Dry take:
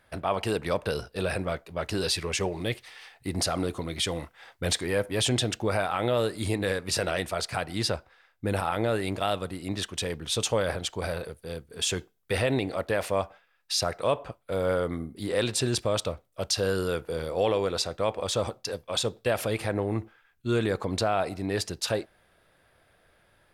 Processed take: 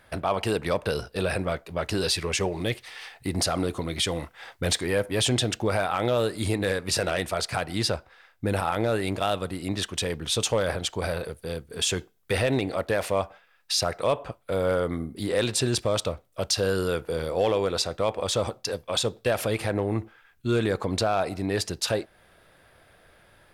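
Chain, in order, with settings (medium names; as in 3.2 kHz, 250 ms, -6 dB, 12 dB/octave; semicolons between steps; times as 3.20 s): in parallel at +1 dB: compression 4:1, threshold -39 dBFS, peak gain reduction 16 dB; on the sum: hard clipper -14.5 dBFS, distortion -27 dB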